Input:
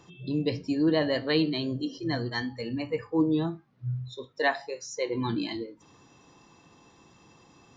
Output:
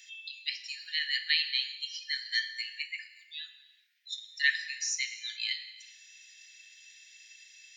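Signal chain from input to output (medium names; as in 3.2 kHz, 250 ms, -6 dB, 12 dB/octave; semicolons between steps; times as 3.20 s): in parallel at -2 dB: compression, threshold -39 dBFS, peak gain reduction 18 dB; on the sum: steep high-pass 1.8 kHz 72 dB/octave; gated-style reverb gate 450 ms falling, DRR 9 dB; trim +4 dB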